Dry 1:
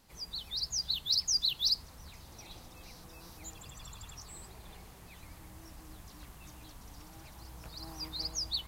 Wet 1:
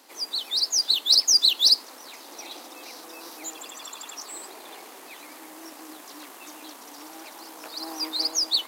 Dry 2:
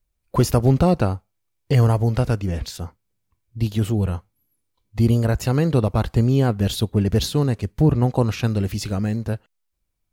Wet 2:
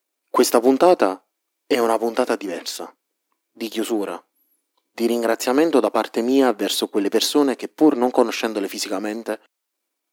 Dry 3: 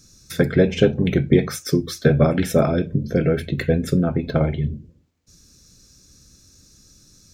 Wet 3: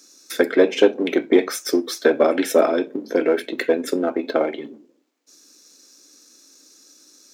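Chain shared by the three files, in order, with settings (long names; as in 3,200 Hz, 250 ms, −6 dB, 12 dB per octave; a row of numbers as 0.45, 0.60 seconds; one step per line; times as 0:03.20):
gain on one half-wave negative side −3 dB
elliptic high-pass filter 280 Hz, stop band 70 dB
loudness normalisation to −20 LKFS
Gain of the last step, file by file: +14.0, +8.0, +4.5 decibels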